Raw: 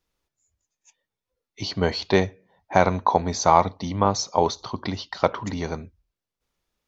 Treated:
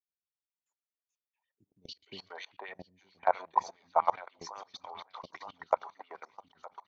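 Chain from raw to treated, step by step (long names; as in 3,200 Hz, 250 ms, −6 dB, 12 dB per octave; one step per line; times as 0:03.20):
on a send: repeating echo 914 ms, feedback 34%, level −12 dB
on the sum: auto-filter band-pass sine 7.4 Hz 770–3,200 Hz
three-band delay without the direct sound lows, highs, mids 250/490 ms, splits 300/3,300 Hz
output level in coarse steps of 22 dB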